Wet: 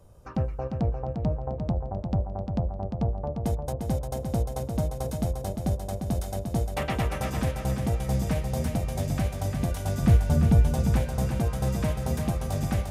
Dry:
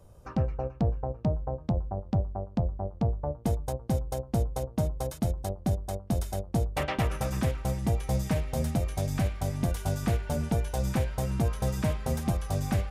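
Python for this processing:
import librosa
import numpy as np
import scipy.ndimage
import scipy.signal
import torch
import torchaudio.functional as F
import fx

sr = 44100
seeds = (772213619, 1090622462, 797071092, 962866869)

p1 = fx.bass_treble(x, sr, bass_db=10, treble_db=-1, at=(10.02, 10.73))
y = p1 + fx.echo_feedback(p1, sr, ms=350, feedback_pct=41, wet_db=-6.0, dry=0)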